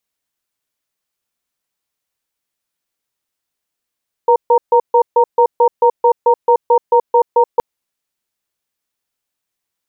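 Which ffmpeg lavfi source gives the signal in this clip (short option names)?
-f lavfi -i "aevalsrc='0.335*(sin(2*PI*483*t)+sin(2*PI*929*t))*clip(min(mod(t,0.22),0.08-mod(t,0.22))/0.005,0,1)':d=3.32:s=44100"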